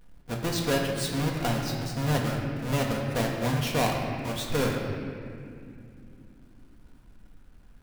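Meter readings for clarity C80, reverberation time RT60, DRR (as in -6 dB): 3.5 dB, not exponential, -1.0 dB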